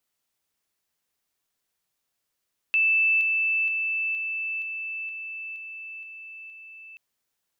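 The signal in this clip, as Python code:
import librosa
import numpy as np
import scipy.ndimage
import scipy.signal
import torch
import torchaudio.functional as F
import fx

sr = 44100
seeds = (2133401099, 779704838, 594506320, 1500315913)

y = fx.level_ladder(sr, hz=2640.0, from_db=-18.0, step_db=-3.0, steps=9, dwell_s=0.47, gap_s=0.0)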